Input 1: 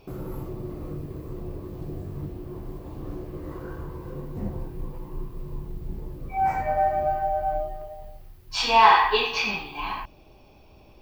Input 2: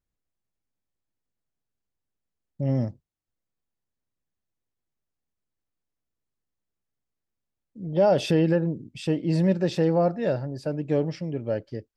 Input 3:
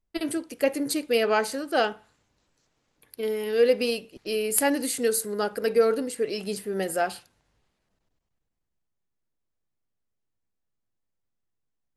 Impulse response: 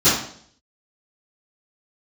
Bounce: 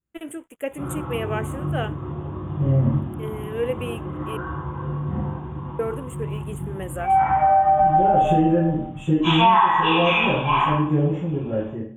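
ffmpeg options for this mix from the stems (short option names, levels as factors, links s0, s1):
-filter_complex "[0:a]firequalizer=gain_entry='entry(250,0);entry(360,-6);entry(930,12);entry(2400,4);entry(3600,10);entry(8900,-25)':delay=0.05:min_phase=1,adelay=700,volume=1,asplit=2[s0][s1];[s1]volume=0.106[s2];[1:a]volume=0.237,asplit=3[s3][s4][s5];[s4]volume=0.398[s6];[2:a]aeval=exprs='sgn(val(0))*max(abs(val(0))-0.00355,0)':c=same,volume=0.562,asplit=3[s7][s8][s9];[s7]atrim=end=4.37,asetpts=PTS-STARTPTS,afade=t=out:st=4.366:d=0.004:c=hsin[s10];[s8]atrim=start=4.37:end=5.79,asetpts=PTS-STARTPTS,volume=0[s11];[s9]atrim=start=5.79,asetpts=PTS-STARTPTS,afade=t=in:d=0.004:c=hsin[s12];[s10][s11][s12]concat=n=3:v=0:a=1[s13];[s5]apad=whole_len=520908[s14];[s0][s14]sidechaingate=range=0.0224:threshold=0.00224:ratio=16:detection=peak[s15];[3:a]atrim=start_sample=2205[s16];[s2][s6]amix=inputs=2:normalize=0[s17];[s17][s16]afir=irnorm=-1:irlink=0[s18];[s15][s3][s13][s18]amix=inputs=4:normalize=0,asuperstop=centerf=4800:order=8:qfactor=1.4,acompressor=threshold=0.224:ratio=10"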